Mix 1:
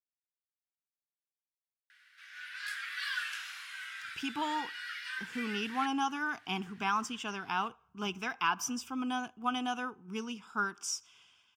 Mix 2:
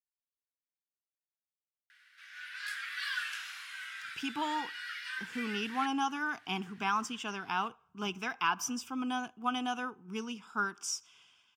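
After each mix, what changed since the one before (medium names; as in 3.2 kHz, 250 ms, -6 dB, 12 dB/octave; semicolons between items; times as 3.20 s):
master: add high-pass 95 Hz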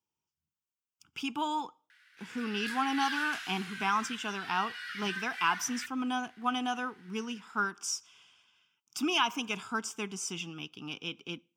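speech: entry -3.00 s; reverb: on, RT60 0.35 s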